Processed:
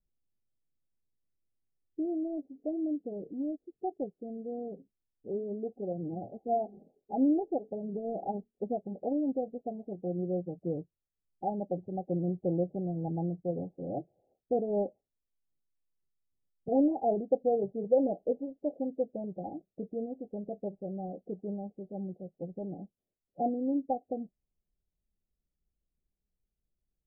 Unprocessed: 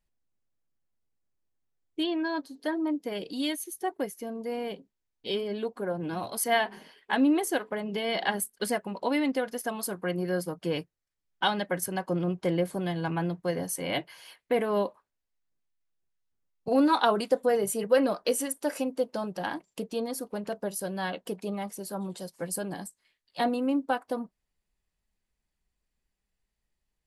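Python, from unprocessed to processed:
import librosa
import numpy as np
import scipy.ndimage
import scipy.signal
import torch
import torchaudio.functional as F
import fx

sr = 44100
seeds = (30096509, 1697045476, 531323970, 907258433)

y = fx.wiener(x, sr, points=41)
y = scipy.signal.sosfilt(scipy.signal.cheby1(10, 1.0, 820.0, 'lowpass', fs=sr, output='sos'), y)
y = F.gain(torch.from_numpy(y), -1.5).numpy()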